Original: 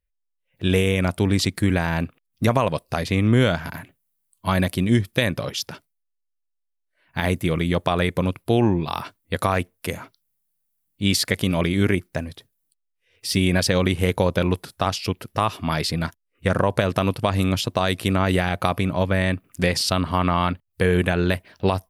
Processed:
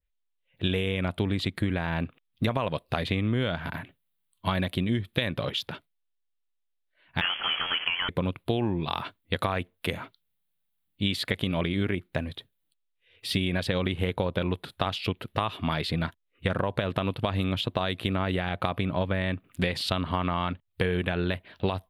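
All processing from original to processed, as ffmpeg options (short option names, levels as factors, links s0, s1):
-filter_complex "[0:a]asettb=1/sr,asplit=3[s0][s1][s2];[s0]atrim=end=7.214[s3];[s1]atrim=start=7.21:end=8.09,asetpts=PTS-STARTPTS,afade=t=in:d=0.004:c=qsin,afade=t=out:st=0.876:d=0.004:c=qsin,aeval=exprs='val(0)+0.5*0.106*sgn(val(0))':c=same,highpass=590,lowpass=f=3000:t=q:w=0.5098,lowpass=f=3000:t=q:w=0.6013,lowpass=f=3000:t=q:w=0.9,lowpass=f=3000:t=q:w=2.563,afreqshift=-3500[s4];[s2]atrim=start=8.086[s5];[s3][s4]acrossfade=d=0.004:c1=hsin:c2=qsin[s6];[s6][s5]acrossfade=d=0.004:c1=qsin:c2=hsin,highshelf=f=4500:t=q:w=3:g=-7.5,acompressor=threshold=0.0794:ratio=6,adynamicequalizer=threshold=0.01:dfrequency=2300:dqfactor=0.7:tfrequency=2300:tqfactor=0.7:attack=5:release=100:ratio=0.375:range=2:mode=cutabove:tftype=highshelf,volume=0.891"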